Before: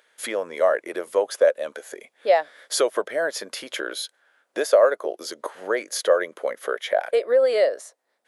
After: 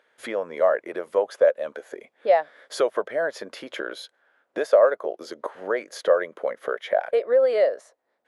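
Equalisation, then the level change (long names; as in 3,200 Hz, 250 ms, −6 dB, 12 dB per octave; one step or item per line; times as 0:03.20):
dynamic equaliser 320 Hz, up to −5 dB, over −35 dBFS, Q 1.4
low-pass filter 1,500 Hz 6 dB per octave
low-shelf EQ 240 Hz +3.5 dB
+1.0 dB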